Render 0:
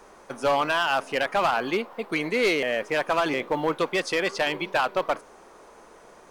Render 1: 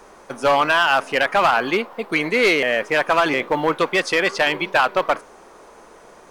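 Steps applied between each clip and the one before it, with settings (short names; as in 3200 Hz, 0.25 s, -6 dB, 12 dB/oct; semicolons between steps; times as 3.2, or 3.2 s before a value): dynamic EQ 1700 Hz, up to +4 dB, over -34 dBFS, Q 0.77; gain +4.5 dB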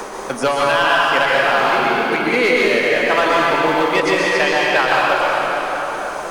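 tremolo 2.5 Hz, depth 59%; plate-style reverb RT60 2.6 s, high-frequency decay 0.8×, pre-delay 0.105 s, DRR -5.5 dB; three-band squash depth 70%; gain -1 dB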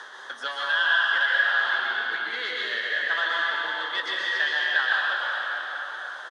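double band-pass 2400 Hz, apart 1 oct; doubler 18 ms -12.5 dB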